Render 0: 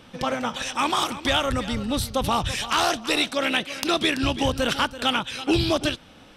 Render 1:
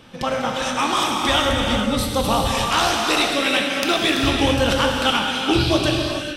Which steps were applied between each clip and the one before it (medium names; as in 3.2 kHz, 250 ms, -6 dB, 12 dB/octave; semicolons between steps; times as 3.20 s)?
gated-style reverb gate 480 ms flat, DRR -0.5 dB; trim +1.5 dB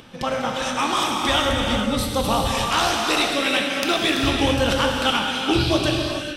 upward compressor, threshold -41 dBFS; trim -1.5 dB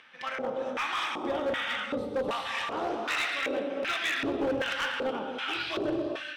LFO band-pass square 1.3 Hz 440–1900 Hz; hard clipper -24.5 dBFS, distortion -14 dB